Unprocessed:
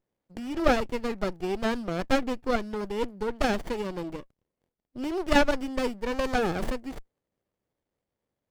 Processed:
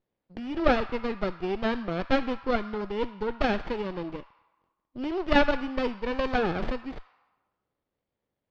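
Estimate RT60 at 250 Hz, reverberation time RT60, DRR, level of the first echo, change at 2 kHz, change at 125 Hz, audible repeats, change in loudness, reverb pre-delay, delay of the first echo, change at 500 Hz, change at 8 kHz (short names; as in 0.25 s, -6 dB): 2.3 s, 1.3 s, 11.0 dB, none, +0.5 dB, 0.0 dB, none, 0.0 dB, 13 ms, none, 0.0 dB, under -10 dB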